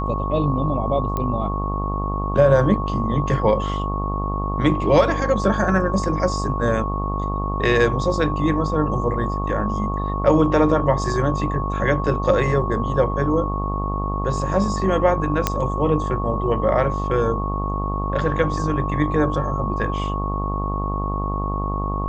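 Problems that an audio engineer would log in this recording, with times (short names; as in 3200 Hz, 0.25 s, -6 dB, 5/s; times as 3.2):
buzz 50 Hz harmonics 25 -25 dBFS
tone 1100 Hz -27 dBFS
1.17 pop -12 dBFS
15.47 pop -3 dBFS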